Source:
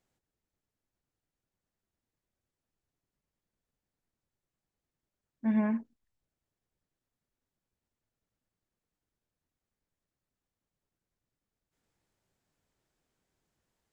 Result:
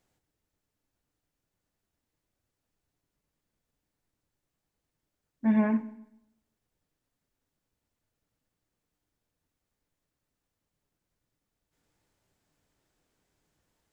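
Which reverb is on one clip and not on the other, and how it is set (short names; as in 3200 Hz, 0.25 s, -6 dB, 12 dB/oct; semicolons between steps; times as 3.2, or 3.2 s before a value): FDN reverb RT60 0.81 s, low-frequency decay 1×, high-frequency decay 0.95×, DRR 10.5 dB; gain +4.5 dB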